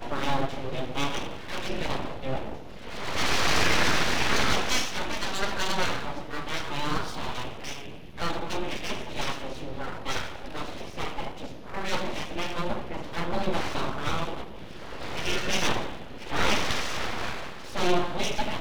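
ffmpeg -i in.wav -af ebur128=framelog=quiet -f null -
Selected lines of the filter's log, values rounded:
Integrated loudness:
  I:         -29.8 LUFS
  Threshold: -40.0 LUFS
Loudness range:
  LRA:         8.2 LU
  Threshold: -50.0 LUFS
  LRA low:   -34.3 LUFS
  LRA high:  -26.1 LUFS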